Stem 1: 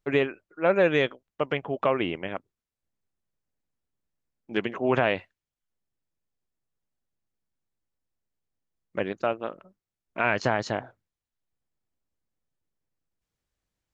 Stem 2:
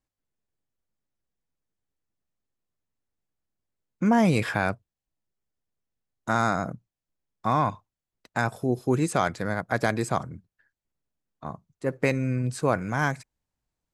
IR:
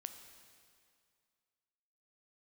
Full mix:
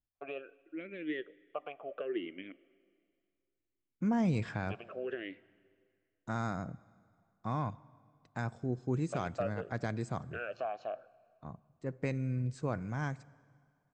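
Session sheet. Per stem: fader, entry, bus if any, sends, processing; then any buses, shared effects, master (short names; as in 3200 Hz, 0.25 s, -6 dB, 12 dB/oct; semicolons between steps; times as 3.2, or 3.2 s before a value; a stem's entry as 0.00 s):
-0.5 dB, 0.15 s, send -7.5 dB, compressor 2:1, threshold -30 dBFS, peak gain reduction 8 dB; vowel sweep a-i 0.66 Hz
-17.0 dB, 0.00 s, send -7 dB, steep low-pass 8100 Hz 72 dB/oct; low shelf 260 Hz +10.5 dB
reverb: on, RT60 2.2 s, pre-delay 9 ms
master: dry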